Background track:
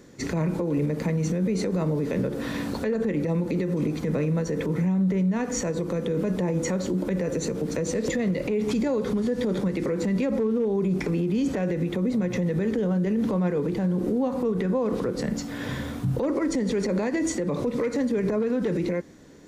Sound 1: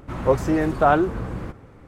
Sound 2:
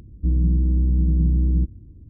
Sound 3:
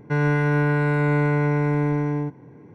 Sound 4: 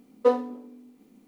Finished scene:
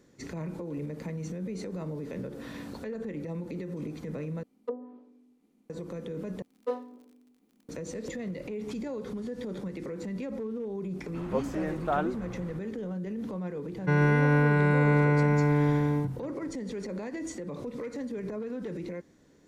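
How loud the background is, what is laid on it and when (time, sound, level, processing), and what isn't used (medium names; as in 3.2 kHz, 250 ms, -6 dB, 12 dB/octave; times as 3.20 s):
background track -11 dB
4.43 s: replace with 4 -11.5 dB + low-pass that closes with the level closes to 370 Hz, closed at -16.5 dBFS
6.42 s: replace with 4 -11.5 dB + crackle 44 per s -40 dBFS
11.06 s: add 1 -11.5 dB + peaking EQ 78 Hz -13.5 dB 0.6 oct
13.77 s: add 3 -2.5 dB
not used: 2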